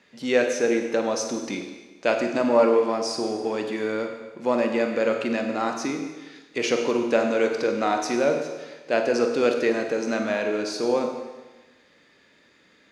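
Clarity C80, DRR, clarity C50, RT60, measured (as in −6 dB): 7.0 dB, 4.0 dB, 5.5 dB, 1.2 s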